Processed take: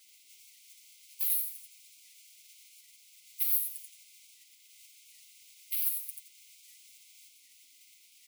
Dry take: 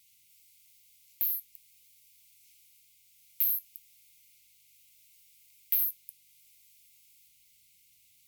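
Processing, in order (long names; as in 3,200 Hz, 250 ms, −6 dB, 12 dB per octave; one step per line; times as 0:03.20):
comb filter 6.8 ms, depth 80%
transient designer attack +6 dB, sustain 0 dB
Butterworth high-pass 250 Hz 96 dB per octave
high-shelf EQ 10,000 Hz +9.5 dB
brickwall limiter −8.5 dBFS, peak gain reduction 14 dB
repeating echo 87 ms, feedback 29%, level −5.5 dB
gate on every frequency bin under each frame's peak −15 dB weak
wow of a warped record 78 rpm, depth 100 cents
level +5.5 dB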